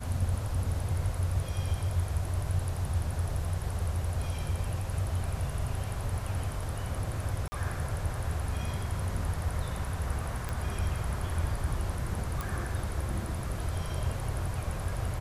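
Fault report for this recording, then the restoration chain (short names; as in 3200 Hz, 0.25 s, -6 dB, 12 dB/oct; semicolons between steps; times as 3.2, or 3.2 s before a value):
7.48–7.52 gap 40 ms
10.49 pop
12.41 pop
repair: de-click; interpolate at 7.48, 40 ms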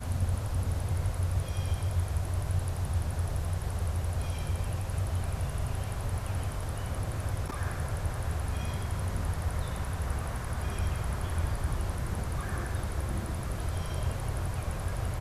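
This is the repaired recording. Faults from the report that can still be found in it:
none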